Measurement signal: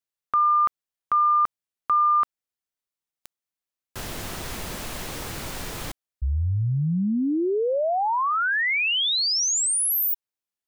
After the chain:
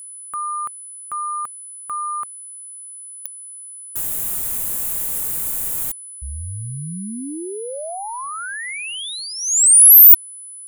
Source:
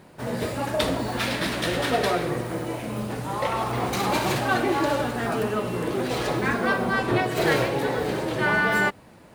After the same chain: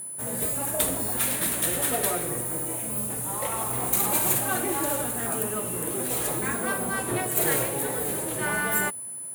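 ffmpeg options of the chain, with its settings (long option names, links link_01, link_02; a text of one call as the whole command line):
ffmpeg -i in.wav -af "aexciter=amount=11.3:drive=6.1:freq=7400,aeval=exprs='val(0)+0.0398*sin(2*PI*10000*n/s)':channel_layout=same,volume=-6dB" out.wav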